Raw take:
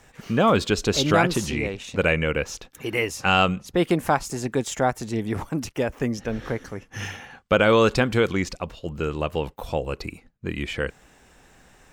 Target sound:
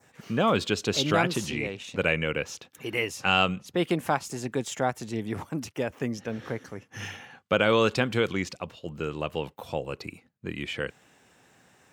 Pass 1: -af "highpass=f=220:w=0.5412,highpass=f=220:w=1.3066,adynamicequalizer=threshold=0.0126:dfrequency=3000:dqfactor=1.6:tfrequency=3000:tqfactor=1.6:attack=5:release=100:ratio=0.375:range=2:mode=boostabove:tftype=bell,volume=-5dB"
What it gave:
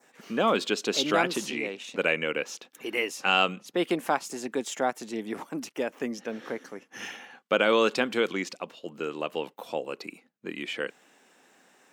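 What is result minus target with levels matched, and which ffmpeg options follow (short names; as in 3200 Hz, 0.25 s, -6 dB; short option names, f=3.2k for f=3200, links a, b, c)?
125 Hz band -12.0 dB
-af "highpass=f=91:w=0.5412,highpass=f=91:w=1.3066,adynamicequalizer=threshold=0.0126:dfrequency=3000:dqfactor=1.6:tfrequency=3000:tqfactor=1.6:attack=5:release=100:ratio=0.375:range=2:mode=boostabove:tftype=bell,volume=-5dB"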